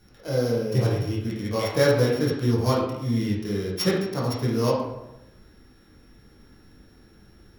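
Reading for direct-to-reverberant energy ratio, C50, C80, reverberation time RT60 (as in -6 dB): -5.5 dB, 2.5 dB, 5.5 dB, 0.90 s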